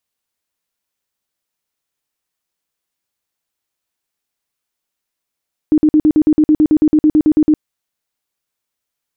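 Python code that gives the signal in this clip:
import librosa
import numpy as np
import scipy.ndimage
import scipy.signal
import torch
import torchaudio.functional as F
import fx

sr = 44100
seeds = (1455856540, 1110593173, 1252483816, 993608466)

y = fx.tone_burst(sr, hz=306.0, cycles=18, every_s=0.11, bursts=17, level_db=-6.5)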